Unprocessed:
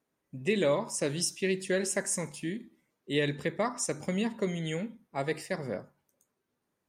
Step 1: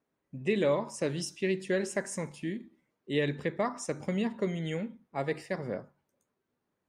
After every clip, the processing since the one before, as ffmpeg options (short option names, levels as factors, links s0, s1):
-af "lowpass=f=2800:p=1"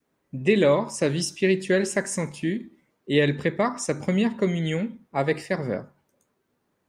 -af "adynamicequalizer=threshold=0.00708:dfrequency=680:dqfactor=0.81:tfrequency=680:tqfactor=0.81:attack=5:release=100:ratio=0.375:range=2:mode=cutabove:tftype=bell,volume=2.82"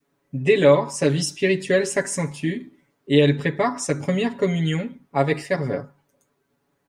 -af "aecho=1:1:7.1:0.95"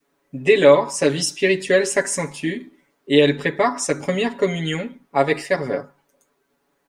-af "equalizer=f=110:w=0.85:g=-12.5,volume=1.58"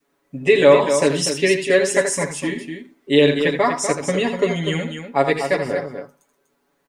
-af "aecho=1:1:81.63|244.9:0.355|0.398"